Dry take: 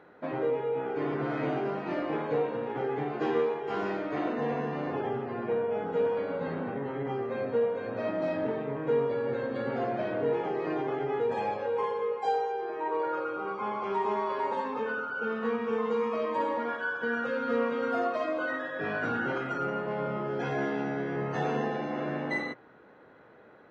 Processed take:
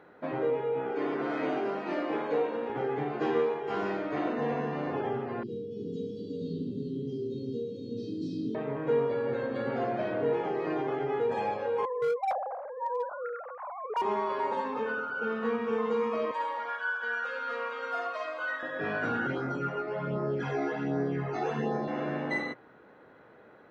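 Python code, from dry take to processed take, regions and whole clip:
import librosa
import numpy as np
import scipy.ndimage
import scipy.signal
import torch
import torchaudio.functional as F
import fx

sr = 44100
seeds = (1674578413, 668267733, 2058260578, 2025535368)

y = fx.chain(x, sr, fx.highpass(hz=200.0, slope=24),
    fx.high_shelf(hz=4600.0, db=5.0), at=(0.92, 2.7))
y = fx.chain(y, sr, fx.cheby2_bandstop(low_hz=620.0, high_hz=2300.0, order=4, stop_db=40),
    fx.peak_eq(hz=5000.0, db=5.5, octaves=1.5),
    fx.echo_multitap(ms=(41, 363), db=(-6.0, -5.0)), at=(5.43, 8.55))
y = fx.chain(y, sr, fx.sine_speech(),
    fx.lowpass(hz=1200.0, slope=12),
    fx.overload_stage(gain_db=25.0), at=(11.85, 14.02))
y = fx.chain(y, sr, fx.highpass(hz=870.0, slope=12),
    fx.doubler(ms=49.0, db=-11), at=(16.31, 18.63))
y = fx.chain(y, sr, fx.phaser_stages(stages=12, low_hz=160.0, high_hz=3000.0, hz=1.3, feedback_pct=25),
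    fx.doubler(ms=22.0, db=-4.5), at=(19.27, 21.88))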